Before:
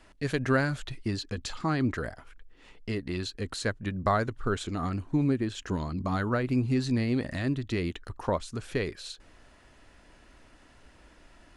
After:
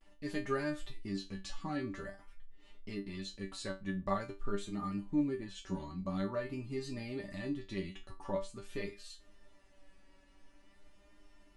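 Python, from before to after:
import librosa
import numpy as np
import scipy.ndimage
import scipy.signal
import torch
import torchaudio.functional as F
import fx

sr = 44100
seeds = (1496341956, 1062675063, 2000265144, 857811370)

y = fx.low_shelf(x, sr, hz=180.0, db=5.0)
y = fx.notch(y, sr, hz=1500.0, q=9.7)
y = fx.resonator_bank(y, sr, root=55, chord='fifth', decay_s=0.23)
y = fx.vibrato(y, sr, rate_hz=0.47, depth_cents=45.0)
y = F.gain(torch.from_numpy(y), 4.0).numpy()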